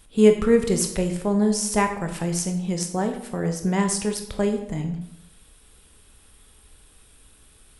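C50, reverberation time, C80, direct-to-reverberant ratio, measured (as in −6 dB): 8.5 dB, 0.80 s, 11.0 dB, 4.5 dB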